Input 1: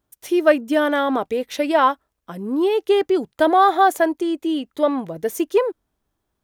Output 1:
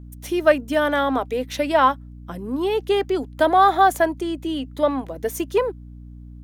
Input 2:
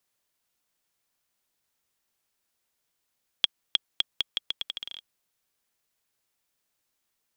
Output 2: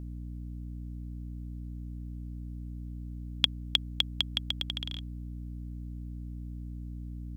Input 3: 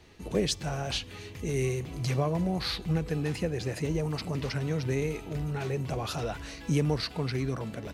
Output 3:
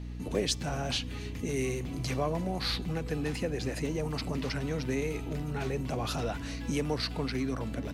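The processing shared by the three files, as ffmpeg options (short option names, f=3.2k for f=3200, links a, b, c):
-filter_complex "[0:a]equalizer=f=260:t=o:w=0.25:g=11,acrossover=split=390|980[a][b][c];[a]acompressor=threshold=-34dB:ratio=6[d];[d][b][c]amix=inputs=3:normalize=0,aeval=exprs='val(0)+0.0126*(sin(2*PI*60*n/s)+sin(2*PI*2*60*n/s)/2+sin(2*PI*3*60*n/s)/3+sin(2*PI*4*60*n/s)/4+sin(2*PI*5*60*n/s)/5)':c=same"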